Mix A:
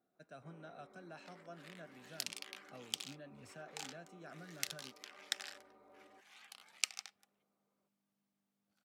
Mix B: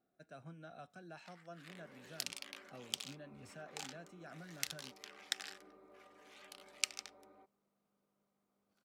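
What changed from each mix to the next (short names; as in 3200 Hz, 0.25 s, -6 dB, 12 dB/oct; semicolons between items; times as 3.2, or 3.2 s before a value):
first sound: entry +1.25 s; master: remove HPF 100 Hz 6 dB/oct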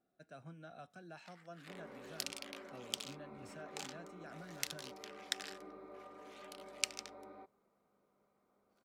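first sound +9.0 dB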